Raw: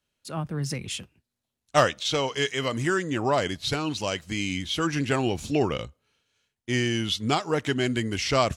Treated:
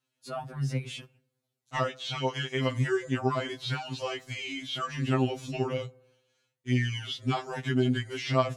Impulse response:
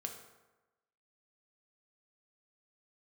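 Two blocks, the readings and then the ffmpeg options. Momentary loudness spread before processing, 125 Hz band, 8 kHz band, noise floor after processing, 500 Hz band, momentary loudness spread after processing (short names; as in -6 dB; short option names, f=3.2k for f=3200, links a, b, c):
9 LU, 0.0 dB, -12.0 dB, -83 dBFS, -5.0 dB, 9 LU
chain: -filter_complex "[0:a]acrossover=split=3900[a][b];[b]acompressor=threshold=-45dB:ratio=4:attack=1:release=60[c];[a][c]amix=inputs=2:normalize=0,highpass=44,acompressor=threshold=-26dB:ratio=2,asplit=2[d][e];[1:a]atrim=start_sample=2205,lowpass=2.1k[f];[e][f]afir=irnorm=-1:irlink=0,volume=-15.5dB[g];[d][g]amix=inputs=2:normalize=0,afftfilt=real='re*2.45*eq(mod(b,6),0)':imag='im*2.45*eq(mod(b,6),0)':win_size=2048:overlap=0.75"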